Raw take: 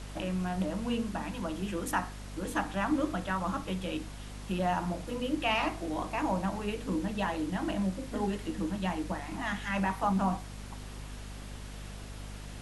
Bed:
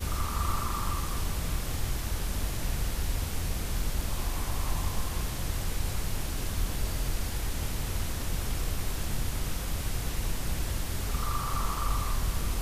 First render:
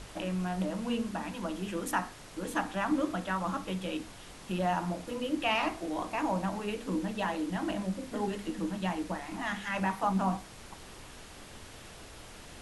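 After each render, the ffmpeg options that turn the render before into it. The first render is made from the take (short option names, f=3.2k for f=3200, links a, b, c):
-af "bandreject=f=50:t=h:w=6,bandreject=f=100:t=h:w=6,bandreject=f=150:t=h:w=6,bandreject=f=200:t=h:w=6,bandreject=f=250:t=h:w=6"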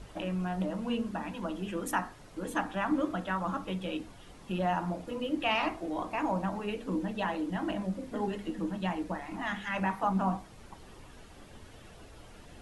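-af "afftdn=nr=9:nf=-49"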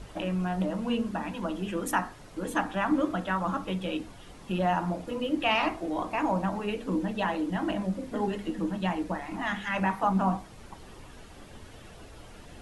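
-af "volume=3.5dB"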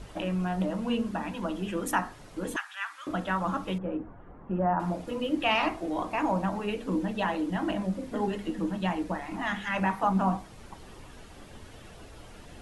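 -filter_complex "[0:a]asettb=1/sr,asplit=3[a][b][c];[a]atrim=end=2.564[d];[b]atrim=start=2.56:end=3.07,asetpts=PTS-STARTPTS,afade=t=in:d=0.004:c=qsin,afade=t=out:st=0.506:d=0.004:c=qsin,highpass=f=1.4k:w=0.5412,highpass=f=1.4k:w=1.3066[e];[c]atrim=start=3.066[f];[d][e]acrossfade=d=0.004:c1=hsin:c2=qsin[g];[g][f]acrossfade=d=0.004:c1=qsin:c2=hsin,asettb=1/sr,asplit=3[h][i][j];[h]atrim=end=3.784[k];[i]atrim=start=3.78:end=4.8,asetpts=PTS-STARTPTS,afade=t=in:d=0.004:c=qsin,afade=t=out:st=1.016:d=0.004:c=qsin,lowpass=f=1.5k:w=0.5412,lowpass=f=1.5k:w=1.3066[l];[j]atrim=start=4.796[m];[k][l]acrossfade=d=0.004:c1=hsin:c2=qsin[n];[n][m]acrossfade=d=0.004:c1=qsin:c2=hsin"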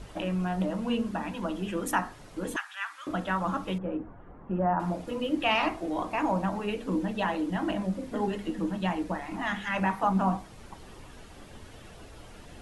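-af anull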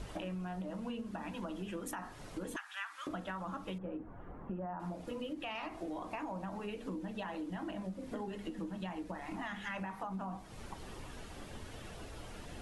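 -af "alimiter=limit=-20.5dB:level=0:latency=1:release=78,acompressor=threshold=-39dB:ratio=6"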